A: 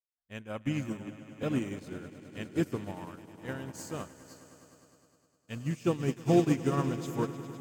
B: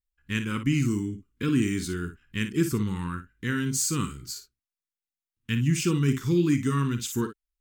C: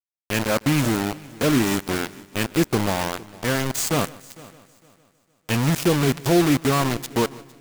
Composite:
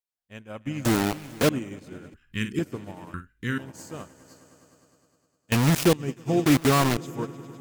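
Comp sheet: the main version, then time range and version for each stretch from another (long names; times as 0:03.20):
A
0:00.85–0:01.49: punch in from C
0:02.14–0:02.59: punch in from B
0:03.14–0:03.58: punch in from B
0:05.52–0:05.93: punch in from C
0:06.46–0:06.97: punch in from C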